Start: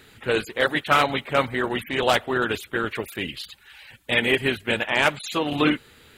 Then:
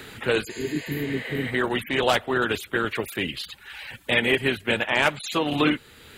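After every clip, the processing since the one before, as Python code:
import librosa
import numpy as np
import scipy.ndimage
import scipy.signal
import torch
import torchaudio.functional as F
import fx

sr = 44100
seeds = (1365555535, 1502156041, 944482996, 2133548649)

y = fx.spec_repair(x, sr, seeds[0], start_s=0.53, length_s=0.95, low_hz=440.0, high_hz=11000.0, source='both')
y = fx.band_squash(y, sr, depth_pct=40)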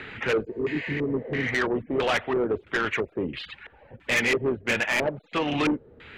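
y = fx.filter_lfo_lowpass(x, sr, shape='square', hz=1.5, low_hz=520.0, high_hz=2300.0, q=2.0)
y = 10.0 ** (-18.5 / 20.0) * np.tanh(y / 10.0 ** (-18.5 / 20.0))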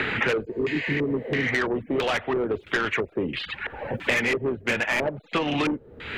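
y = fx.band_squash(x, sr, depth_pct=100)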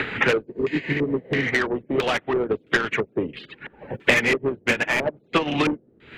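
y = fx.dmg_noise_band(x, sr, seeds[1], low_hz=120.0, high_hz=460.0, level_db=-39.0)
y = fx.upward_expand(y, sr, threshold_db=-38.0, expansion=2.5)
y = y * librosa.db_to_amplitude(7.5)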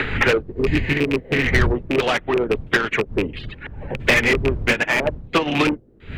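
y = fx.rattle_buzz(x, sr, strikes_db=-27.0, level_db=-15.0)
y = fx.dmg_wind(y, sr, seeds[2], corner_hz=100.0, level_db=-31.0)
y = np.clip(10.0 ** (12.0 / 20.0) * y, -1.0, 1.0) / 10.0 ** (12.0 / 20.0)
y = y * librosa.db_to_amplitude(3.0)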